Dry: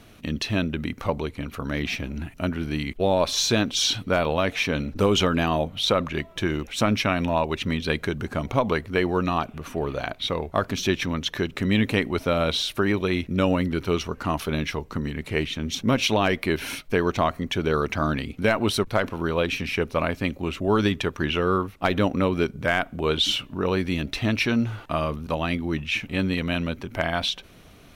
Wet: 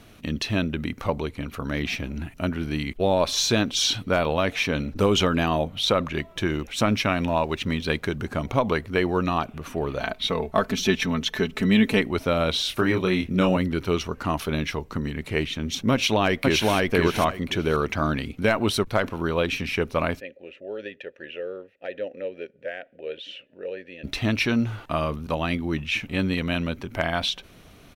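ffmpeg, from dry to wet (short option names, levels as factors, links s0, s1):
-filter_complex "[0:a]asettb=1/sr,asplit=3[s0][s1][s2];[s0]atrim=end=6.894[s3];[s1]atrim=start=6.89:end=8.16,asetpts=PTS-STARTPTS,afade=t=in:d=0.004:c=qsin,afade=t=out:st=1.266:d=0.004:c=qsin,aeval=exprs='sgn(val(0))*max(abs(val(0))-0.00211,0)':c=same[s4];[s2]atrim=start=8.156[s5];[s3][s4]acrossfade=d=0.004:c1=hsin:c2=qsin[s6];[s6][s5]acrossfade=d=0.004:c1=qsin:c2=hsin,asettb=1/sr,asplit=3[s7][s8][s9];[s7]atrim=end=10.004[s10];[s8]atrim=start=10:end=12.01,asetpts=PTS-STARTPTS,afade=t=in:d=0.004:c=qsin,afade=t=out:st=2.006:d=0.004:c=qsin,aecho=1:1:4.6:0.67,atrim=end_sample=88641[s11];[s9]atrim=start=12.006[s12];[s10][s11]acrossfade=d=0.004:c1=hsin:c2=qsin[s13];[s13][s12]acrossfade=d=0.004:c1=qsin:c2=hsin,asettb=1/sr,asplit=3[s14][s15][s16];[s14]atrim=end=12.624[s17];[s15]atrim=start=12.62:end=13.57,asetpts=PTS-STARTPTS,afade=t=in:d=0.004:c=qsin,afade=t=out:st=0.946:d=0.004:c=qsin,asplit=2[s18][s19];[s19]adelay=27,volume=0.596[s20];[s18][s20]amix=inputs=2:normalize=0,atrim=end_sample=41895[s21];[s16]atrim=start=13.566[s22];[s17][s21]acrossfade=d=0.004:c1=hsin:c2=qsin[s23];[s23][s22]acrossfade=d=0.004:c1=qsin:c2=hsin,asplit=2[s24][s25];[s25]afade=t=in:st=15.92:d=0.01,afade=t=out:st=16.72:d=0.01,aecho=0:1:520|1040|1560:0.944061|0.188812|0.0377624[s26];[s24][s26]amix=inputs=2:normalize=0,asplit=3[s27][s28][s29];[s27]afade=t=out:st=20.19:d=0.02[s30];[s28]asplit=3[s31][s32][s33];[s31]bandpass=f=530:t=q:w=8,volume=1[s34];[s32]bandpass=f=1840:t=q:w=8,volume=0.501[s35];[s33]bandpass=f=2480:t=q:w=8,volume=0.355[s36];[s34][s35][s36]amix=inputs=3:normalize=0,afade=t=in:st=20.19:d=0.02,afade=t=out:st=24.03:d=0.02[s37];[s29]afade=t=in:st=24.03:d=0.02[s38];[s30][s37][s38]amix=inputs=3:normalize=0"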